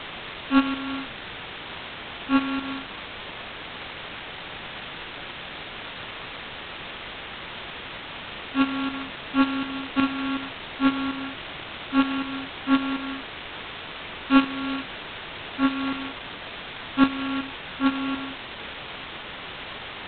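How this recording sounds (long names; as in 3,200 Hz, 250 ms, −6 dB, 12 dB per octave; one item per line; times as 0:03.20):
a buzz of ramps at a fixed pitch in blocks of 32 samples
tremolo saw up 2.7 Hz, depth 70%
a quantiser's noise floor 6 bits, dither triangular
G.726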